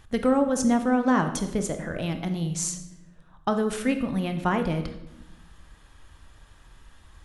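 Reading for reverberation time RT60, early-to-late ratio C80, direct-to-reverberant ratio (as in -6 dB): 0.90 s, 12.0 dB, 7.0 dB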